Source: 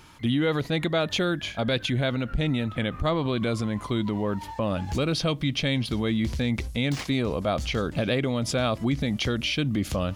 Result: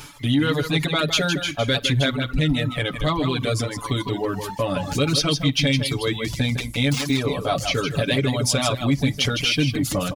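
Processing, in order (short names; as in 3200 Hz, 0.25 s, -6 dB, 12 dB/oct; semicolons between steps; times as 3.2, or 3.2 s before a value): high shelf 4200 Hz +9 dB; echo 0.158 s -6 dB; reverse; upward compressor, threshold -25 dBFS; reverse; comb 7 ms, depth 88%; flutter echo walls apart 8.7 m, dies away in 0.2 s; reverb removal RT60 0.68 s; in parallel at -3.5 dB: soft clip -15.5 dBFS, distortion -17 dB; on the sum: gain -2.5 dB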